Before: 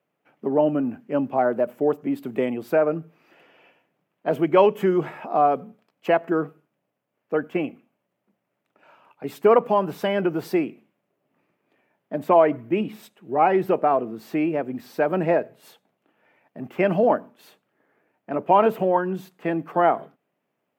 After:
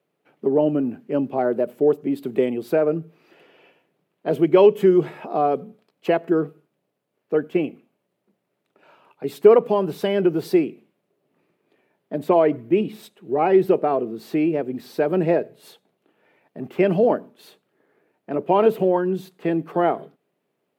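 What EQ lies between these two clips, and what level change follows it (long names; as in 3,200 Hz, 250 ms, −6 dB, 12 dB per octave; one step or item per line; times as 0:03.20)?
graphic EQ with 15 bands 160 Hz +4 dB, 400 Hz +8 dB, 4,000 Hz +7 dB, 10,000 Hz +5 dB
dynamic equaliser 1,100 Hz, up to −4 dB, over −33 dBFS, Q 0.77
−1.0 dB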